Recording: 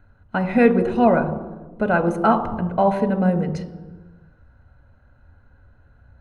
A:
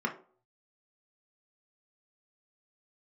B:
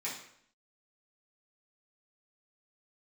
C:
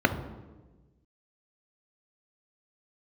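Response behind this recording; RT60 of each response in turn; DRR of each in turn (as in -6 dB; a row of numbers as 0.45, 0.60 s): C; 0.50, 0.65, 1.2 s; 0.5, -9.0, 7.5 dB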